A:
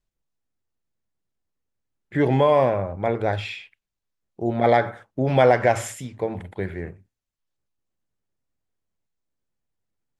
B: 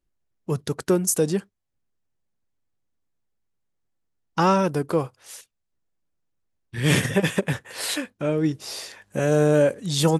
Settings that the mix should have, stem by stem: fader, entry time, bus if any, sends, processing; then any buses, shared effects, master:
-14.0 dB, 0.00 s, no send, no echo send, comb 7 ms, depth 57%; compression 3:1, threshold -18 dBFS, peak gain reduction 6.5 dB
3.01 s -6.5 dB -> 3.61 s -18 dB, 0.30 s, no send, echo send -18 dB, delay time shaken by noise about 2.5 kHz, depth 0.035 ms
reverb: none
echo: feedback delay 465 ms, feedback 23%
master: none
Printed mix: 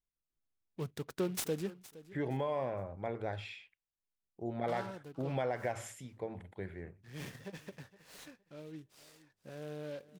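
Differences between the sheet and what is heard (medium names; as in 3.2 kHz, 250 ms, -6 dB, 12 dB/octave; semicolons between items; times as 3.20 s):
stem A: missing comb 7 ms, depth 57%; stem B -6.5 dB -> -14.0 dB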